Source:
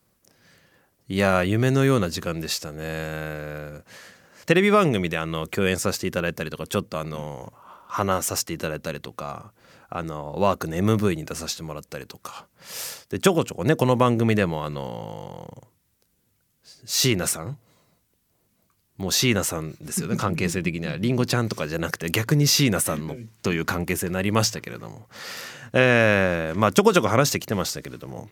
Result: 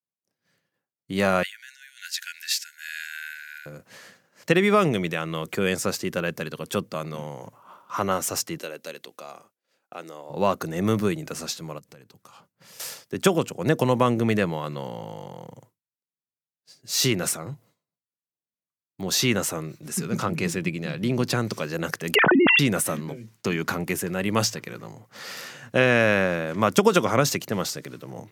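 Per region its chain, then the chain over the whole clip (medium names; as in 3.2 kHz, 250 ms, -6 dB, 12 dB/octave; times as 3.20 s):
1.43–3.66 s: compressor with a negative ratio -24 dBFS, ratio -0.5 + brick-wall FIR high-pass 1.4 kHz
8.58–10.30 s: high-pass 420 Hz + peaking EQ 1.1 kHz -8 dB 1.6 oct
11.78–12.80 s: bass shelf 170 Hz +10.5 dB + compression 4:1, threshold -45 dBFS
22.15–22.59 s: formants replaced by sine waves + level flattener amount 100%
whole clip: expander -46 dBFS; high-pass 110 Hz 24 dB/octave; trim -1.5 dB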